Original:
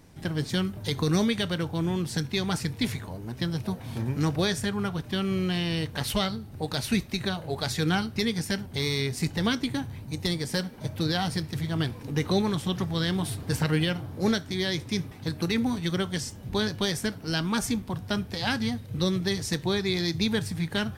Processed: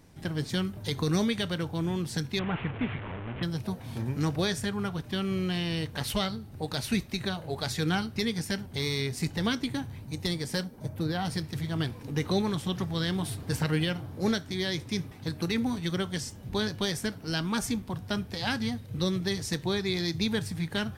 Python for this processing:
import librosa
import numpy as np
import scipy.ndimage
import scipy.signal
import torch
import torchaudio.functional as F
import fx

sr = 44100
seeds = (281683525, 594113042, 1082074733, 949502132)

y = fx.delta_mod(x, sr, bps=16000, step_db=-29.5, at=(2.39, 3.43))
y = fx.peak_eq(y, sr, hz=fx.line((10.63, 2100.0), (11.24, 6800.0)), db=-9.5, octaves=2.2, at=(10.63, 11.24), fade=0.02)
y = y * 10.0 ** (-2.5 / 20.0)